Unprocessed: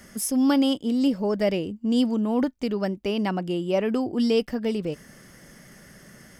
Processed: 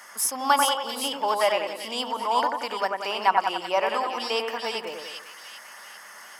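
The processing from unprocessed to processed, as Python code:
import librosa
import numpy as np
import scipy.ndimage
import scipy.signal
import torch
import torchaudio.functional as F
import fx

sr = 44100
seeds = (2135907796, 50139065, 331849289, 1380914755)

y = fx.highpass_res(x, sr, hz=950.0, q=3.4)
y = fx.echo_split(y, sr, split_hz=2500.0, low_ms=91, high_ms=392, feedback_pct=52, wet_db=-4.0)
y = y * 10.0 ** (3.5 / 20.0)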